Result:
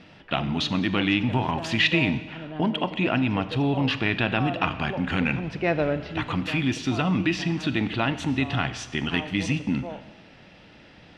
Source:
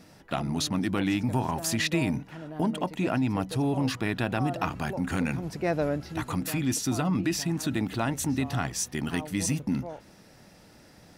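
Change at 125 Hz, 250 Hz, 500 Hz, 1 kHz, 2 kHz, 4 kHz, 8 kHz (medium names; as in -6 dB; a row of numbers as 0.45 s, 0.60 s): +2.5 dB, +2.5 dB, +3.0 dB, +3.5 dB, +8.0 dB, +7.0 dB, -10.5 dB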